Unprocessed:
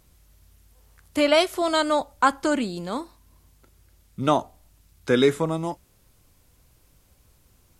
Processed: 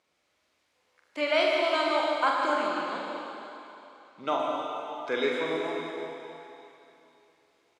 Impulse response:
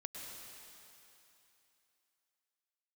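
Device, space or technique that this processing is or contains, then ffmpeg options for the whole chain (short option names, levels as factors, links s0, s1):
station announcement: -filter_complex "[0:a]highpass=430,lowpass=4400,equalizer=f=2200:t=o:w=0.24:g=5,aecho=1:1:43.73|75.8:0.562|0.316[s0];[1:a]atrim=start_sample=2205[s1];[s0][s1]afir=irnorm=-1:irlink=0,asettb=1/sr,asplit=3[s2][s3][s4];[s2]atrim=end=2.694[s5];[s3]atrim=start=2.69:end=4.39,asetpts=PTS-STARTPTS,afade=t=in:d=0.004:c=qsin,afade=t=out:st=1.696:d=0.004:c=qsin,lowpass=7900[s6];[s4]atrim=start=4.386[s7];[s5][s6]acrossfade=d=0.004:c1=hsin:c2=qsin[s8];[s8][s7]acrossfade=d=0.004:c1=qsin:c2=hsin,volume=0.794"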